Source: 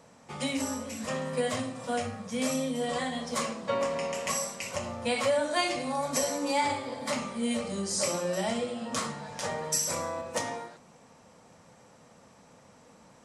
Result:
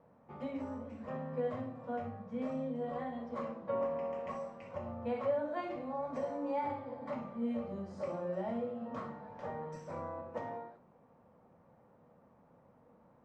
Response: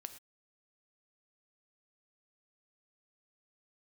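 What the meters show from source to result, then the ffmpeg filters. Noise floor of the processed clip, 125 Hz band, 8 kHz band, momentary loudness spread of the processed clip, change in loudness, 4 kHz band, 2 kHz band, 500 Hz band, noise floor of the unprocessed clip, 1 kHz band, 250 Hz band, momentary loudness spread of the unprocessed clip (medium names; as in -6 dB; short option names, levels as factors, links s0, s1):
-65 dBFS, -6.0 dB, under -35 dB, 8 LU, -8.5 dB, under -25 dB, -16.5 dB, -6.0 dB, -57 dBFS, -8.0 dB, -6.5 dB, 7 LU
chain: -filter_complex "[0:a]lowpass=1100[s0];[1:a]atrim=start_sample=2205,asetrate=70560,aresample=44100[s1];[s0][s1]afir=irnorm=-1:irlink=0,volume=1.26"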